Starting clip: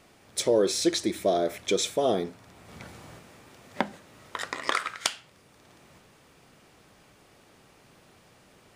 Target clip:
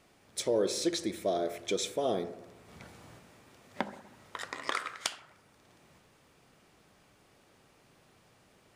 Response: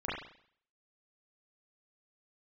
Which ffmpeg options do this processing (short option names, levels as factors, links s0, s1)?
-filter_complex "[0:a]asplit=2[s0][s1];[1:a]atrim=start_sample=2205,asetrate=24255,aresample=44100[s2];[s1][s2]afir=irnorm=-1:irlink=0,volume=0.0891[s3];[s0][s3]amix=inputs=2:normalize=0,volume=0.447"